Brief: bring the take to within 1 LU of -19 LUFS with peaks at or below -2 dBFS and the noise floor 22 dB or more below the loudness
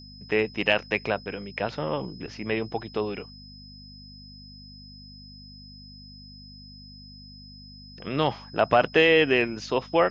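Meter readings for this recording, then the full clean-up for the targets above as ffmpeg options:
hum 50 Hz; highest harmonic 250 Hz; hum level -46 dBFS; steady tone 5.1 kHz; tone level -47 dBFS; loudness -25.0 LUFS; peak level -6.0 dBFS; loudness target -19.0 LUFS
-> -af "bandreject=f=50:t=h:w=4,bandreject=f=100:t=h:w=4,bandreject=f=150:t=h:w=4,bandreject=f=200:t=h:w=4,bandreject=f=250:t=h:w=4"
-af "bandreject=f=5100:w=30"
-af "volume=2,alimiter=limit=0.794:level=0:latency=1"

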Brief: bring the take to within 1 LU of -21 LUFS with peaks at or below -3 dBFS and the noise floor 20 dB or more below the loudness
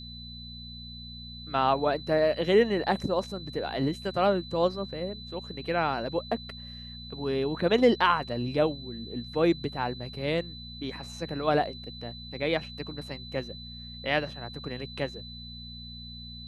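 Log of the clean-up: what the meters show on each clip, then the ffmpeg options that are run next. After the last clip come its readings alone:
hum 60 Hz; highest harmonic 240 Hz; hum level -42 dBFS; steady tone 4 kHz; tone level -43 dBFS; loudness -29.0 LUFS; peak level -8.5 dBFS; loudness target -21.0 LUFS
-> -af "bandreject=f=60:t=h:w=4,bandreject=f=120:t=h:w=4,bandreject=f=180:t=h:w=4,bandreject=f=240:t=h:w=4"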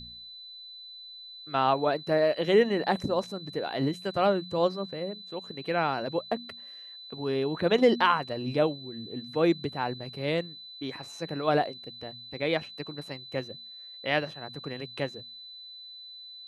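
hum not found; steady tone 4 kHz; tone level -43 dBFS
-> -af "bandreject=f=4000:w=30"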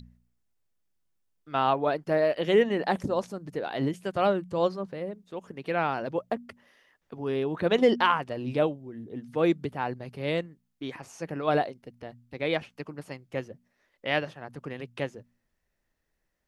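steady tone not found; loudness -28.5 LUFS; peak level -8.5 dBFS; loudness target -21.0 LUFS
-> -af "volume=2.37,alimiter=limit=0.708:level=0:latency=1"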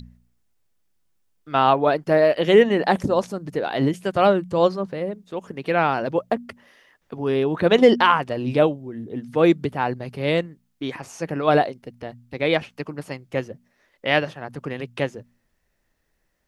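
loudness -21.0 LUFS; peak level -3.0 dBFS; noise floor -70 dBFS

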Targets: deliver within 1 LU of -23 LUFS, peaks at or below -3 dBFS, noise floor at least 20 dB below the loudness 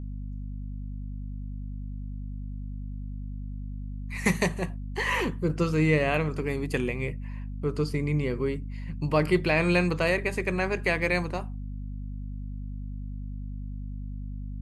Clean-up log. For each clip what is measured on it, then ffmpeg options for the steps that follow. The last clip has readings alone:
hum 50 Hz; highest harmonic 250 Hz; hum level -33 dBFS; loudness -29.5 LUFS; peak level -9.5 dBFS; loudness target -23.0 LUFS
-> -af "bandreject=f=50:t=h:w=6,bandreject=f=100:t=h:w=6,bandreject=f=150:t=h:w=6,bandreject=f=200:t=h:w=6,bandreject=f=250:t=h:w=6"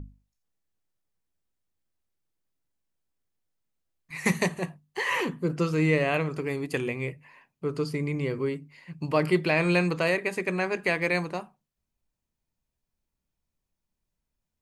hum not found; loudness -27.5 LUFS; peak level -10.0 dBFS; loudness target -23.0 LUFS
-> -af "volume=1.68"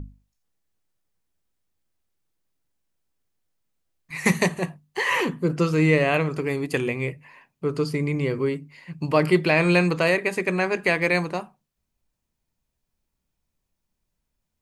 loudness -23.0 LUFS; peak level -5.5 dBFS; noise floor -80 dBFS

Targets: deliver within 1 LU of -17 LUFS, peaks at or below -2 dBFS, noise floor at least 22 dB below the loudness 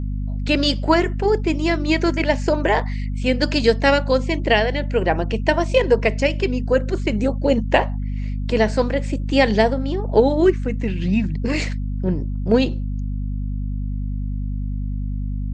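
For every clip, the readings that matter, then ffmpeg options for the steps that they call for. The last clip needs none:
hum 50 Hz; highest harmonic 250 Hz; hum level -22 dBFS; loudness -20.5 LUFS; peak level -1.5 dBFS; loudness target -17.0 LUFS
-> -af "bandreject=f=50:t=h:w=4,bandreject=f=100:t=h:w=4,bandreject=f=150:t=h:w=4,bandreject=f=200:t=h:w=4,bandreject=f=250:t=h:w=4"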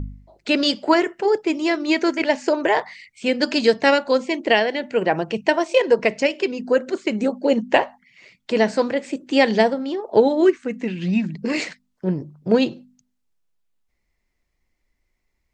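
hum not found; loudness -20.5 LUFS; peak level -2.0 dBFS; loudness target -17.0 LUFS
-> -af "volume=1.5,alimiter=limit=0.794:level=0:latency=1"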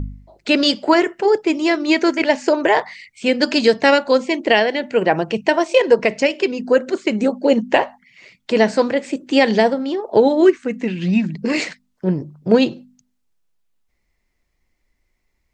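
loudness -17.5 LUFS; peak level -2.0 dBFS; noise floor -69 dBFS

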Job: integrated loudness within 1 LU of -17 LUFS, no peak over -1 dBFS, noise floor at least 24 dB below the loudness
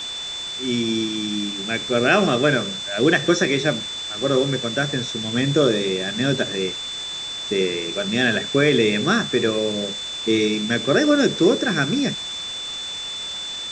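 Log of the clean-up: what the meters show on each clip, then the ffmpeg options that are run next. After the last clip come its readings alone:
steady tone 3.5 kHz; tone level -28 dBFS; noise floor -30 dBFS; noise floor target -45 dBFS; loudness -21.0 LUFS; peak level -4.0 dBFS; loudness target -17.0 LUFS
-> -af "bandreject=f=3500:w=30"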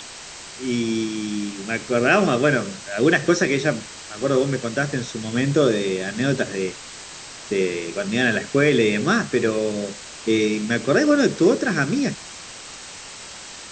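steady tone not found; noise floor -39 dBFS; noise floor target -45 dBFS
-> -af "afftdn=nr=6:nf=-39"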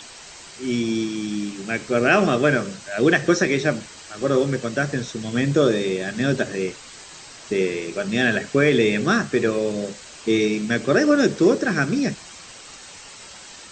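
noise floor -42 dBFS; noise floor target -46 dBFS
-> -af "afftdn=nr=6:nf=-42"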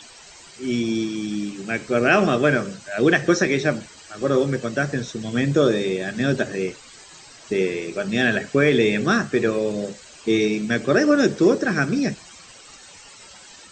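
noise floor -45 dBFS; noise floor target -46 dBFS
-> -af "afftdn=nr=6:nf=-45"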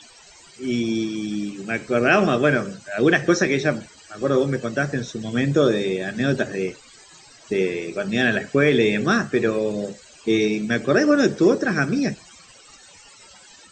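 noise floor -49 dBFS; loudness -21.5 LUFS; peak level -3.5 dBFS; loudness target -17.0 LUFS
-> -af "volume=1.68,alimiter=limit=0.891:level=0:latency=1"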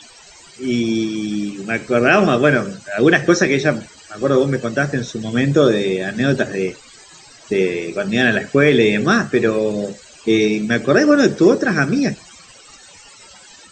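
loudness -17.0 LUFS; peak level -1.0 dBFS; noise floor -44 dBFS

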